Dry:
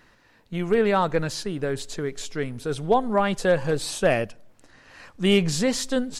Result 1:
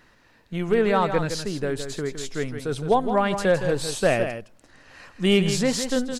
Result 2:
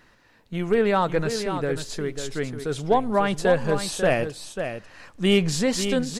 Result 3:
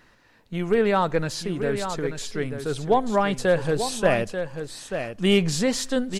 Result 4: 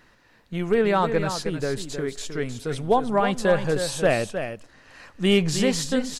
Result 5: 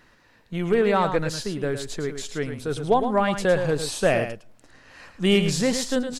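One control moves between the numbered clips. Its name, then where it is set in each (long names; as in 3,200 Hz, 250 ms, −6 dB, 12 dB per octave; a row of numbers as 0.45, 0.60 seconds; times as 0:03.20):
single-tap delay, delay time: 163, 544, 888, 313, 109 milliseconds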